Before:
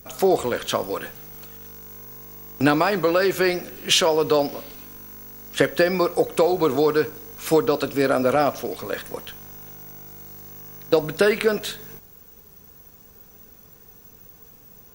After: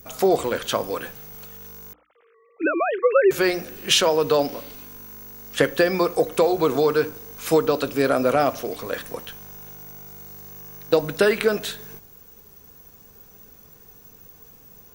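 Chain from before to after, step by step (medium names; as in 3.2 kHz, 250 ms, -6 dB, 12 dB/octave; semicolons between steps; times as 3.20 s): 1.93–3.31 s: formants replaced by sine waves; hum notches 60/120/180/240/300 Hz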